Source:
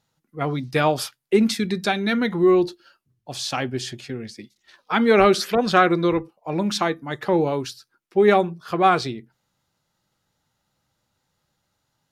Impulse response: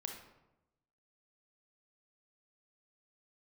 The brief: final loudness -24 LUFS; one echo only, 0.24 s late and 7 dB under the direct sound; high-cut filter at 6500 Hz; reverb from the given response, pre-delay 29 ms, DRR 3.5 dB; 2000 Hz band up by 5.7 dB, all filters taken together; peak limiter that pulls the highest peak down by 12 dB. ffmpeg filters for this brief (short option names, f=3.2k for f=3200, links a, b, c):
-filter_complex "[0:a]lowpass=6.5k,equalizer=f=2k:t=o:g=7.5,alimiter=limit=-11dB:level=0:latency=1,aecho=1:1:240:0.447,asplit=2[a][b];[1:a]atrim=start_sample=2205,adelay=29[c];[b][c]afir=irnorm=-1:irlink=0,volume=-1.5dB[d];[a][d]amix=inputs=2:normalize=0,volume=-3dB"